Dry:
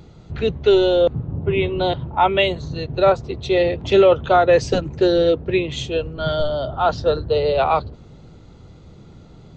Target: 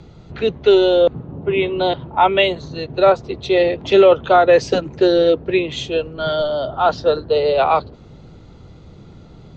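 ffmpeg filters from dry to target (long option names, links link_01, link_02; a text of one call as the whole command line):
ffmpeg -i in.wav -filter_complex "[0:a]lowpass=6600,acrossover=split=180|2200[link_01][link_02][link_03];[link_01]acompressor=threshold=-40dB:ratio=6[link_04];[link_04][link_02][link_03]amix=inputs=3:normalize=0,volume=2.5dB" out.wav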